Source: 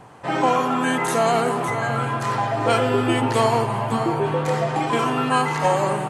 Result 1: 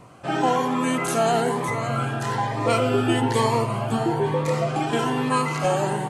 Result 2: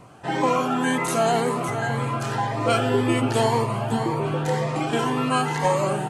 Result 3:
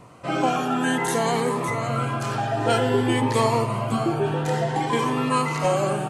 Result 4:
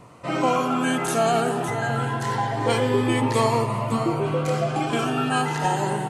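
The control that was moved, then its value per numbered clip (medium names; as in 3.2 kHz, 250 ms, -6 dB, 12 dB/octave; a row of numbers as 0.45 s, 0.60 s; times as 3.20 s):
Shepard-style phaser, rate: 1.1 Hz, 1.9 Hz, 0.55 Hz, 0.26 Hz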